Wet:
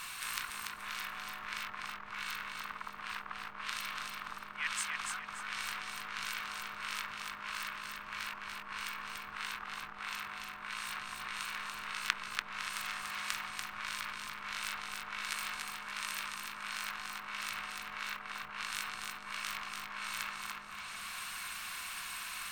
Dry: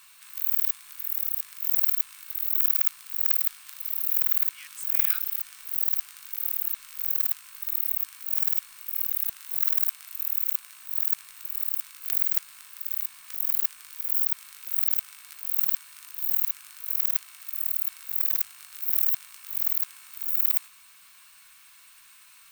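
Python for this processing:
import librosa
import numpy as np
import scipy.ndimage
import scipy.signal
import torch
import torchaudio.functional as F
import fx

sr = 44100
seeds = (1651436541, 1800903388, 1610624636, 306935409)

y = fx.env_lowpass_down(x, sr, base_hz=610.0, full_db=-22.5)
y = fx.high_shelf(y, sr, hz=3500.0, db=-10.0)
y = fx.echo_feedback(y, sr, ms=289, feedback_pct=34, wet_db=-4.0)
y = y * 10.0 ** (16.5 / 20.0)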